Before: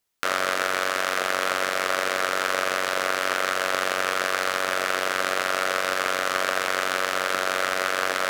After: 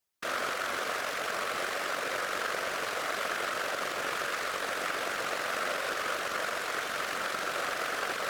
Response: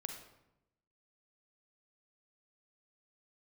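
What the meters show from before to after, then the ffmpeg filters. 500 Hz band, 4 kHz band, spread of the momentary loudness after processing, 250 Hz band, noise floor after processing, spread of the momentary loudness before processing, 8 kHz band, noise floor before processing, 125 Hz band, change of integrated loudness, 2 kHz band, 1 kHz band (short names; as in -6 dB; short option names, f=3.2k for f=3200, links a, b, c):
-8.0 dB, -8.0 dB, 1 LU, -7.5 dB, -36 dBFS, 0 LU, -8.0 dB, -28 dBFS, -6.5 dB, -8.0 dB, -8.0 dB, -8.0 dB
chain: -af "alimiter=limit=-8dB:level=0:latency=1:release=152,afftfilt=real='hypot(re,im)*cos(2*PI*random(0))':imag='hypot(re,im)*sin(2*PI*random(1))':win_size=512:overlap=0.75"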